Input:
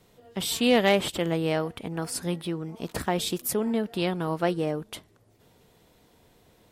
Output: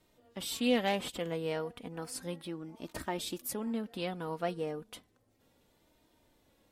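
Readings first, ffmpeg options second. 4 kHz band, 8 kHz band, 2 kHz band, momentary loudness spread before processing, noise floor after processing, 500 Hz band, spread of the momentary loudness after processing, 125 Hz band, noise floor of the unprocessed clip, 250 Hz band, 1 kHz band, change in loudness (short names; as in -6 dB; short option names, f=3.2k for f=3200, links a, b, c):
-9.0 dB, -9.0 dB, -9.0 dB, 12 LU, -71 dBFS, -9.0 dB, 14 LU, -11.5 dB, -61 dBFS, -8.5 dB, -8.0 dB, -9.0 dB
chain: -af "flanger=delay=3.2:depth=1.1:regen=35:speed=0.33:shape=triangular,volume=-5dB"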